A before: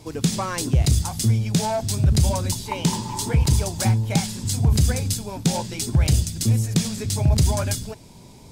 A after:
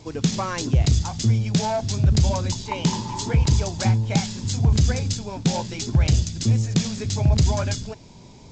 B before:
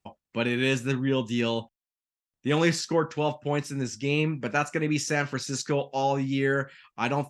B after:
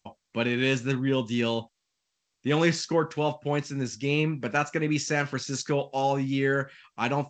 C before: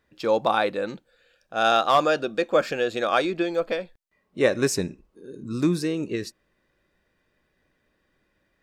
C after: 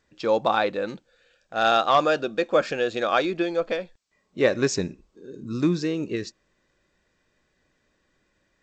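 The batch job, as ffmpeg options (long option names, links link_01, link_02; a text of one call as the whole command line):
ffmpeg -i in.wav -ar 16000 -c:a g722 out.g722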